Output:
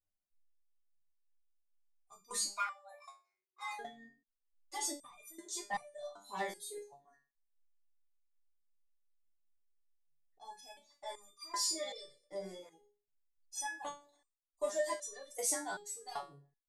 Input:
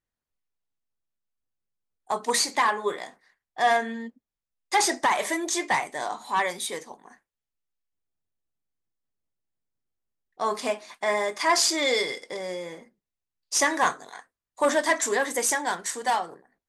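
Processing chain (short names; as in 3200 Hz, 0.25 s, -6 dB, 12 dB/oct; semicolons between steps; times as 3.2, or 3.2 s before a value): bell 1900 Hz -11.5 dB 2.1 oct; reverb RT60 0.35 s, pre-delay 3 ms, DRR 2 dB; 2.51–3.79 frequency shift +370 Hz; reverb removal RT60 1.4 s; 13.79–14.96 notch 1400 Hz, Q 5.4; stepped resonator 2.6 Hz 99–1200 Hz; gain +2 dB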